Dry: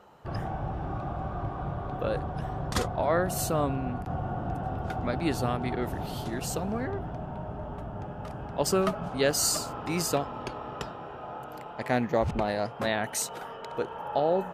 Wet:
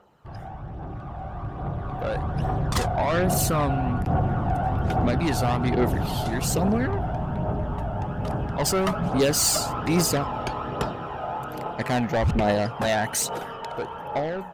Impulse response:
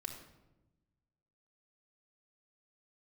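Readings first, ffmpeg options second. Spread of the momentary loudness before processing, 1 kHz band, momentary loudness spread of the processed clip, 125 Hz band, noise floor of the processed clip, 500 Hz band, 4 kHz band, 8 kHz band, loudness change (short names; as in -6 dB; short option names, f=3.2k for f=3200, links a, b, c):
12 LU, +5.0 dB, 11 LU, +8.0 dB, -37 dBFS, +3.0 dB, +5.0 dB, +5.5 dB, +5.5 dB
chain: -af "asoftclip=type=tanh:threshold=-26dB,dynaudnorm=f=800:g=5:m=13dB,aphaser=in_gain=1:out_gain=1:delay=1.5:decay=0.39:speed=1.2:type=triangular,volume=-5dB"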